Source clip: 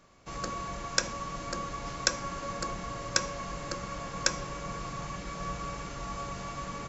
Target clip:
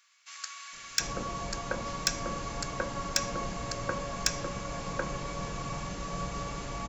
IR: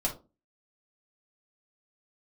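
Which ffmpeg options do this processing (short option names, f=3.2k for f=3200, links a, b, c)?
-filter_complex "[0:a]acrossover=split=1500[a][b];[a]adelay=730[c];[c][b]amix=inputs=2:normalize=0,asplit=2[d][e];[1:a]atrim=start_sample=2205,asetrate=57330,aresample=44100[f];[e][f]afir=irnorm=-1:irlink=0,volume=-20.5dB[g];[d][g]amix=inputs=2:normalize=0,asoftclip=type=tanh:threshold=-15.5dB,volume=2dB"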